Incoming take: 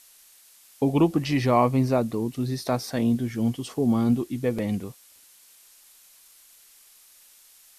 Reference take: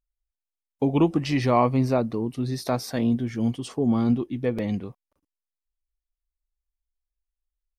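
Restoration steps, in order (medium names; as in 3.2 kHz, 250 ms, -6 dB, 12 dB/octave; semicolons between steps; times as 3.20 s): noise print and reduce 30 dB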